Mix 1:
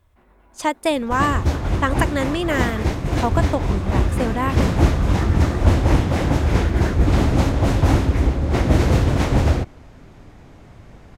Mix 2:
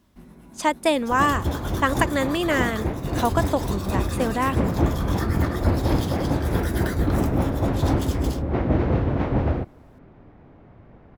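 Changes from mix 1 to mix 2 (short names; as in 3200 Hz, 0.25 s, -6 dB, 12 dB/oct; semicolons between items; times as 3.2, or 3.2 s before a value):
first sound: remove three-band isolator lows -24 dB, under 430 Hz, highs -22 dB, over 3000 Hz; second sound: add tape spacing loss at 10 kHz 44 dB; master: add low shelf 110 Hz -9.5 dB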